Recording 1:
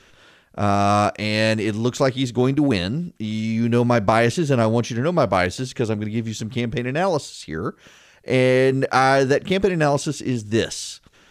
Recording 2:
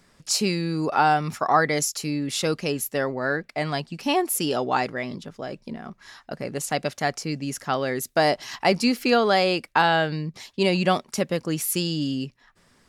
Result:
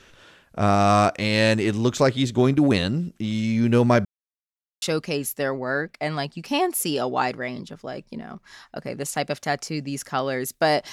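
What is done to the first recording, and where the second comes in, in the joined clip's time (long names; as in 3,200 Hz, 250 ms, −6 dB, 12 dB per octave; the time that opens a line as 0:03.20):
recording 1
0:04.05–0:04.82: silence
0:04.82: continue with recording 2 from 0:02.37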